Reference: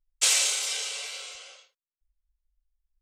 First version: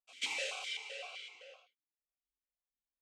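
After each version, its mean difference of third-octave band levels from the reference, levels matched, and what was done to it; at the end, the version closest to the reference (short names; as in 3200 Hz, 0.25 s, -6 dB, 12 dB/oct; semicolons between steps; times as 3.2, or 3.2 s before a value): 6.5 dB: hard clip -16.5 dBFS, distortion -18 dB; pre-echo 0.141 s -21.5 dB; vowel sequencer 7.8 Hz; gain +5 dB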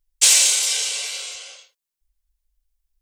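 2.5 dB: high shelf 3600 Hz +8 dB; notch 1300 Hz, Q 16; in parallel at -4.5 dB: soft clip -15 dBFS, distortion -12 dB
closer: second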